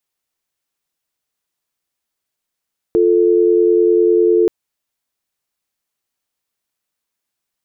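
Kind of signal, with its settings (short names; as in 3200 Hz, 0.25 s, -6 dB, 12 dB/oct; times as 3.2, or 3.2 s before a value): call progress tone dial tone, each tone -12 dBFS 1.53 s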